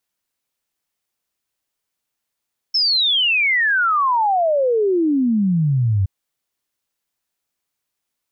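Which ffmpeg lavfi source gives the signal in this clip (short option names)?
-f lavfi -i "aevalsrc='0.2*clip(min(t,3.32-t)/0.01,0,1)*sin(2*PI*5400*3.32/log(92/5400)*(exp(log(92/5400)*t/3.32)-1))':d=3.32:s=44100"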